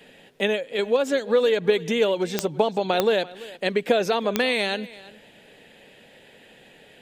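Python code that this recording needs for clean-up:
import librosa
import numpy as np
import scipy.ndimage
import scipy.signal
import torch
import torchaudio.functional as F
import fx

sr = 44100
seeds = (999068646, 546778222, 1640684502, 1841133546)

y = fx.fix_declick_ar(x, sr, threshold=10.0)
y = fx.fix_echo_inverse(y, sr, delay_ms=340, level_db=-19.5)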